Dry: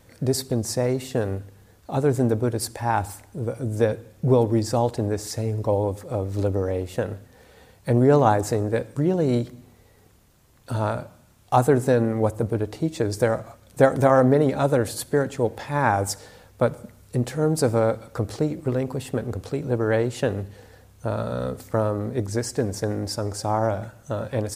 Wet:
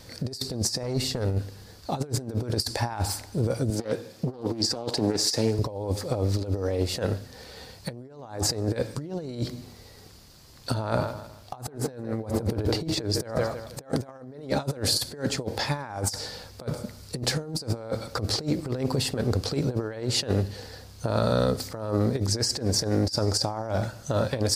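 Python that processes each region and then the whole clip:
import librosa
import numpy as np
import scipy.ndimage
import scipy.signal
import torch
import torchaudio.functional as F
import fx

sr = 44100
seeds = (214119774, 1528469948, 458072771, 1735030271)

y = fx.chain(x, sr, fx.low_shelf(hz=130.0, db=10.0),
    fx.tube_stage(drive_db=16.0, bias=0.6), at=(0.83, 1.39))
y = fx.chain(y, sr, fx.highpass(hz=180.0, slope=12),
    fx.doppler_dist(depth_ms=0.53), at=(3.7, 5.59))
y = fx.chain(y, sr, fx.peak_eq(hz=7100.0, db=-5.5, octaves=2.1),
    fx.echo_feedback(ms=160, feedback_pct=34, wet_db=-15),
    fx.sustainer(db_per_s=88.0), at=(10.74, 13.92))
y = fx.peak_eq(y, sr, hz=4700.0, db=14.0, octaves=0.62)
y = fx.over_compress(y, sr, threshold_db=-27.0, ratio=-0.5)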